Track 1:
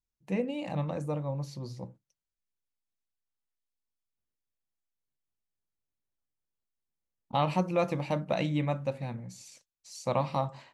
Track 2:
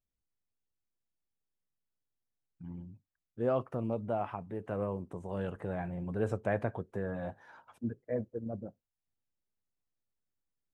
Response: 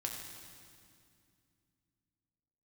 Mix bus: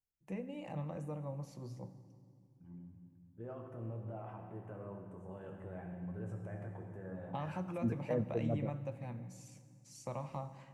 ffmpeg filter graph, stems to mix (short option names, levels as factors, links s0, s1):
-filter_complex "[0:a]acrossover=split=140[s0][s1];[s1]acompressor=threshold=0.0178:ratio=3[s2];[s0][s2]amix=inputs=2:normalize=0,volume=0.335,asplit=3[s3][s4][s5];[s4]volume=0.531[s6];[1:a]alimiter=level_in=1.41:limit=0.0631:level=0:latency=1:release=52,volume=0.708,volume=1.06,asplit=2[s7][s8];[s8]volume=0.299[s9];[s5]apad=whole_len=473593[s10];[s7][s10]sidechaingate=range=0.0224:threshold=0.002:ratio=16:detection=peak[s11];[2:a]atrim=start_sample=2205[s12];[s6][s9]amix=inputs=2:normalize=0[s13];[s13][s12]afir=irnorm=-1:irlink=0[s14];[s3][s11][s14]amix=inputs=3:normalize=0,equalizer=f=4100:t=o:w=0.66:g=-10.5"